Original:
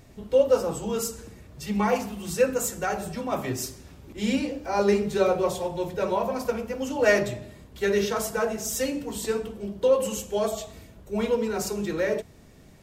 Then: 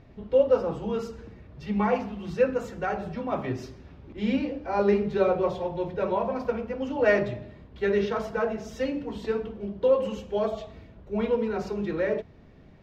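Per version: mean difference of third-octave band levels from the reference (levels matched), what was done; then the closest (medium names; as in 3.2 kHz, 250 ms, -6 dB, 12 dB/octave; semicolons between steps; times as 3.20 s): 4.5 dB: distance through air 280 m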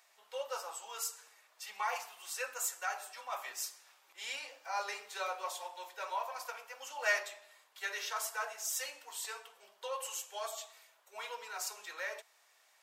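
13.0 dB: high-pass 830 Hz 24 dB/octave; trim -6 dB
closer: first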